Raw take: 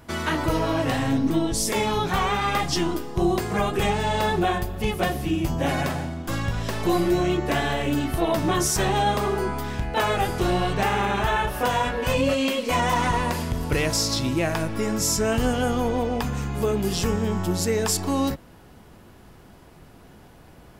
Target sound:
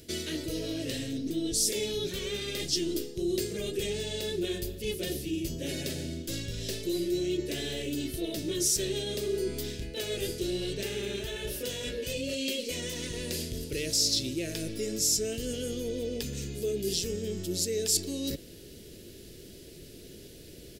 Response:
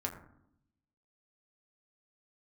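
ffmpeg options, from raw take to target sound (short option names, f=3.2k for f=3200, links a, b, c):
-af "asuperstop=centerf=760:order=4:qfactor=5.6,areverse,acompressor=threshold=-32dB:ratio=6,areverse,firequalizer=gain_entry='entry(220,0);entry(390,9);entry(1000,-23);entry(1700,-4);entry(2700,5);entry(4000,12);entry(14000,10)':delay=0.05:min_phase=1,volume=-2dB"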